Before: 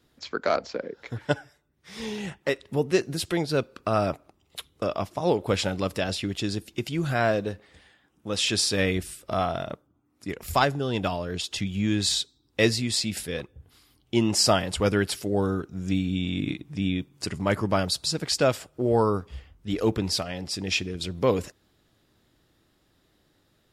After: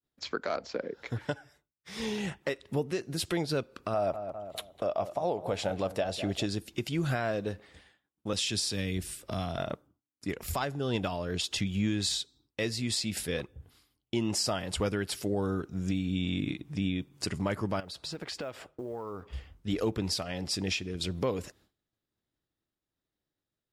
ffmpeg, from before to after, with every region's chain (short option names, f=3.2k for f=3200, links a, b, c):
-filter_complex "[0:a]asettb=1/sr,asplit=3[a][b][c];[a]atrim=end=3.944[d];[b]atrim=start=3.94:end=6.46,asetpts=PTS-STARTPTS,afade=t=in:d=0.004:c=qsin,afade=t=out:st=2.516:d=0.004:c=qsin,equalizer=f=670:w=1.8:g=11.5,bandreject=f=5.1k:w=19,asplit=2[e][f];[f]adelay=201,lowpass=f=1.8k:p=1,volume=-15dB,asplit=2[g][h];[h]adelay=201,lowpass=f=1.8k:p=1,volume=0.38,asplit=2[i][j];[j]adelay=201,lowpass=f=1.8k:p=1,volume=0.38[k];[e][g][i][k]amix=inputs=4:normalize=0,atrim=end_sample=111132[l];[c]atrim=start=6.456[m];[d][l]acrossfade=d=0.004:c1=hsin:c2=qsin[n];[n][m]acrossfade=d=0.004:c1=qsin:c2=hsin,asettb=1/sr,asplit=3[o][p][q];[o]atrim=end=8.334[r];[p]atrim=start=8.33:end=9.58,asetpts=PTS-STARTPTS,afade=t=in:d=0.004:c=qsin,afade=t=out:st=1.246:d=0.004:c=qsin,bandreject=f=1.3k:w=23,acrossover=split=270|3000[s][t][u];[t]acompressor=threshold=-37dB:ratio=3:attack=3.2:release=140:knee=2.83:detection=peak[v];[s][v][u]amix=inputs=3:normalize=0[w];[q]atrim=start=9.576[x];[r][w]acrossfade=d=0.004:c1=hsin:c2=qsin[y];[y][x]acrossfade=d=0.004:c1=qsin:c2=hsin,asettb=1/sr,asplit=3[z][aa][ab];[z]atrim=end=17.804[ac];[aa]atrim=start=17.8:end=19.33,asetpts=PTS-STARTPTS,afade=t=in:d=0.004:c=qsin,afade=t=out:st=1.526:d=0.004:c=qsin,bass=f=250:g=-7,treble=f=4k:g=-13,acompressor=threshold=-34dB:ratio=10:attack=3.2:release=140:knee=1:detection=peak,acrusher=bits=9:mode=log:mix=0:aa=0.000001[ad];[ab]atrim=start=19.326[ae];[ac][ad]acrossfade=d=0.004:c1=hsin:c2=qsin[af];[af][ae]acrossfade=d=0.004:c1=qsin:c2=hsin,agate=range=-33dB:threshold=-51dB:ratio=3:detection=peak,acompressor=threshold=-29dB:ratio=1.5,alimiter=limit=-20dB:level=0:latency=1:release=337"